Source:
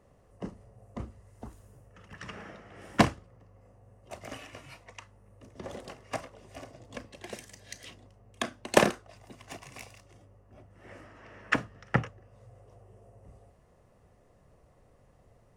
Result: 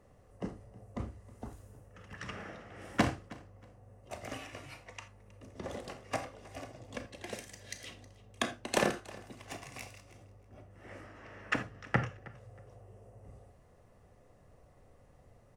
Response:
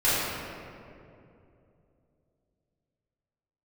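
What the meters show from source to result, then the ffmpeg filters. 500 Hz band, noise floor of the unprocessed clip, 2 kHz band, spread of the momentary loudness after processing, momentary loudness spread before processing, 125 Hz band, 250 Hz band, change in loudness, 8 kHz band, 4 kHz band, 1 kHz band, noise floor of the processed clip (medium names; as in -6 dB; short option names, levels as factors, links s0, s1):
-5.5 dB, -62 dBFS, -4.0 dB, 23 LU, 24 LU, -3.5 dB, -4.5 dB, -6.0 dB, -3.0 dB, -3.5 dB, -5.0 dB, -62 dBFS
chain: -filter_complex "[0:a]alimiter=limit=0.2:level=0:latency=1:release=116,aecho=1:1:317|634:0.0944|0.0208,asplit=2[s0][s1];[1:a]atrim=start_sample=2205,atrim=end_sample=3969[s2];[s1][s2]afir=irnorm=-1:irlink=0,volume=0.0944[s3];[s0][s3]amix=inputs=2:normalize=0,volume=0.891"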